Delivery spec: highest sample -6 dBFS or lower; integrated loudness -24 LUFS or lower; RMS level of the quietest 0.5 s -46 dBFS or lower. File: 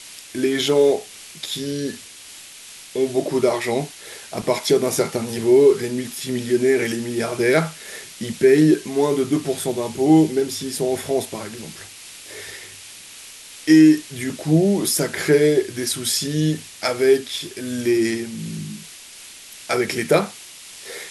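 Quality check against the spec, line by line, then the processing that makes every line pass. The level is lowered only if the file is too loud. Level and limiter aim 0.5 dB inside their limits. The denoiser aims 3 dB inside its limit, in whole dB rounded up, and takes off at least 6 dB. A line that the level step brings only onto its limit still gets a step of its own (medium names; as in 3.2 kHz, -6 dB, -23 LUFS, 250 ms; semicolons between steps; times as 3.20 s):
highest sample -3.0 dBFS: fail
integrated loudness -20.0 LUFS: fail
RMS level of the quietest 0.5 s -41 dBFS: fail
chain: noise reduction 6 dB, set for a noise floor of -41 dBFS; trim -4.5 dB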